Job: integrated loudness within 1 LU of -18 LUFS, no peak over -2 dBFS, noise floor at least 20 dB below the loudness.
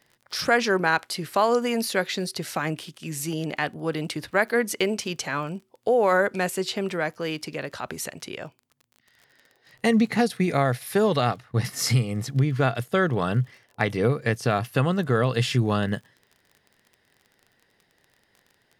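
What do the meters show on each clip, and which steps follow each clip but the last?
tick rate 29 per s; loudness -25.0 LUFS; peak level -6.5 dBFS; loudness target -18.0 LUFS
-> de-click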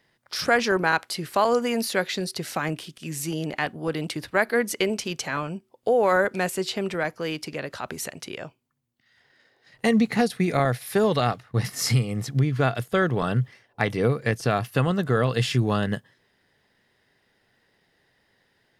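tick rate 0 per s; loudness -25.0 LUFS; peak level -6.5 dBFS; loudness target -18.0 LUFS
-> trim +7 dB; peak limiter -2 dBFS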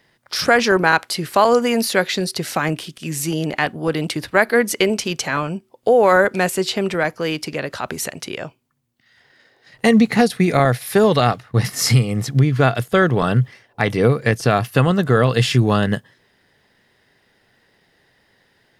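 loudness -18.0 LUFS; peak level -2.0 dBFS; noise floor -61 dBFS

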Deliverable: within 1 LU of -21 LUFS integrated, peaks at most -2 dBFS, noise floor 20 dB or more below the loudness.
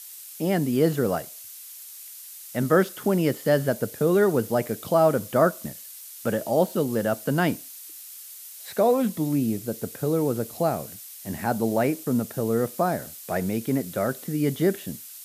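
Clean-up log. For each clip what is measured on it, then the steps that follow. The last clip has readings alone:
noise floor -43 dBFS; noise floor target -45 dBFS; loudness -25.0 LUFS; peak level -6.5 dBFS; loudness target -21.0 LUFS
-> noise print and reduce 6 dB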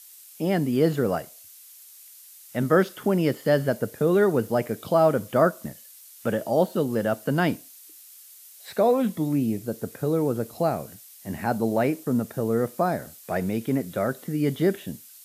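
noise floor -48 dBFS; loudness -25.0 LUFS; peak level -6.5 dBFS; loudness target -21.0 LUFS
-> trim +4 dB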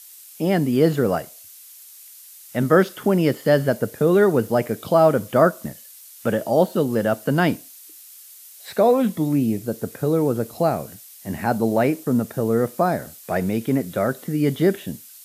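loudness -21.0 LUFS; peak level -2.5 dBFS; noise floor -44 dBFS

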